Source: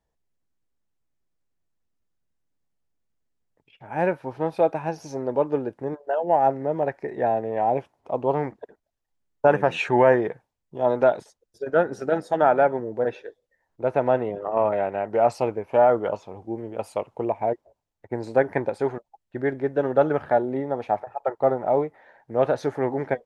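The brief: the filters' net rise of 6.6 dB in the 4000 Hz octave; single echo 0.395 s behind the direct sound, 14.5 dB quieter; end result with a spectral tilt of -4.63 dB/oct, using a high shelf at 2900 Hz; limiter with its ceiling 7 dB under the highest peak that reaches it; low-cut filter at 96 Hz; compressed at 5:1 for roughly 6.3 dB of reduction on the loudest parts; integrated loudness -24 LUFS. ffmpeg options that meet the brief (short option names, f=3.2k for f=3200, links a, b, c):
-af "highpass=96,highshelf=f=2.9k:g=4.5,equalizer=f=4k:t=o:g=5.5,acompressor=threshold=-19dB:ratio=5,alimiter=limit=-15.5dB:level=0:latency=1,aecho=1:1:395:0.188,volume=4.5dB"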